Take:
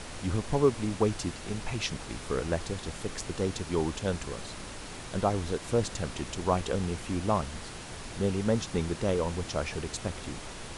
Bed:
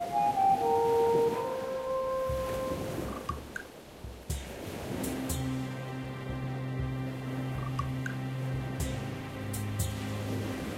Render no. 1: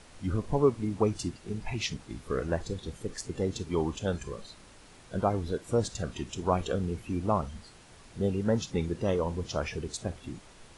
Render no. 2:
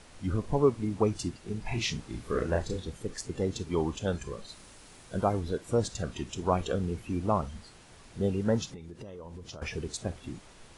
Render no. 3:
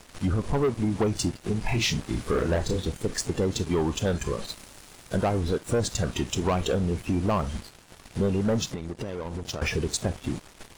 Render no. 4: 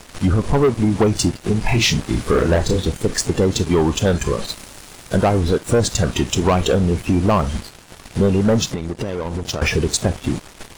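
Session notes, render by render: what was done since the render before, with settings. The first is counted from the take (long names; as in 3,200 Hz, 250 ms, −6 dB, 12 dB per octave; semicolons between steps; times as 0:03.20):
noise reduction from a noise print 12 dB
0:01.62–0:02.83: double-tracking delay 34 ms −3 dB; 0:04.48–0:05.39: high-shelf EQ 5,600 Hz → 9,800 Hz +8.5 dB; 0:08.65–0:09.62: downward compressor 20 to 1, threshold −39 dBFS
leveller curve on the samples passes 3; downward compressor 2.5 to 1, threshold −24 dBFS, peak gain reduction 7 dB
level +9 dB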